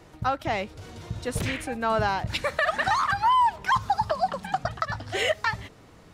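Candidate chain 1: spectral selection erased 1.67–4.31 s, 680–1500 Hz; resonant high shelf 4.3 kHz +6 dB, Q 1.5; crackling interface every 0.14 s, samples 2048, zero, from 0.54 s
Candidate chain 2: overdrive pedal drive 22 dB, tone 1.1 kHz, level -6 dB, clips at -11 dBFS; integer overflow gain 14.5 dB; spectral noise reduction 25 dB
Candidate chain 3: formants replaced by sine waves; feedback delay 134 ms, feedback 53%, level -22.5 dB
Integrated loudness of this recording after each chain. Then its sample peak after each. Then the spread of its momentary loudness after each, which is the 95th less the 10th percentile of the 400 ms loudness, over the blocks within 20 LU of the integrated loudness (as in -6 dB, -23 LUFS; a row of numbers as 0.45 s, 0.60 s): -31.0 LUFS, -23.5 LUFS, -25.5 LUFS; -10.0 dBFS, -11.0 dBFS, -8.5 dBFS; 10 LU, 9 LU, 22 LU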